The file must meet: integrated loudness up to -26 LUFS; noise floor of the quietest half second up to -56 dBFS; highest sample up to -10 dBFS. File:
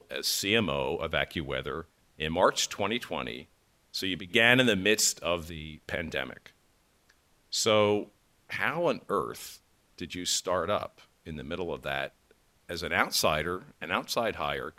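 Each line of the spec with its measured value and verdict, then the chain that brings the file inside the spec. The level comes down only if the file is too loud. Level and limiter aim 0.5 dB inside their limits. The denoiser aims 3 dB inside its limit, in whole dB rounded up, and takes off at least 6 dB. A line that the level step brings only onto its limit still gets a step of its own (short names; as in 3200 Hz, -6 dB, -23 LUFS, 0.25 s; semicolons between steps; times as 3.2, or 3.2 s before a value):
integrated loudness -28.5 LUFS: OK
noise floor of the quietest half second -67 dBFS: OK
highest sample -7.5 dBFS: fail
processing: limiter -10.5 dBFS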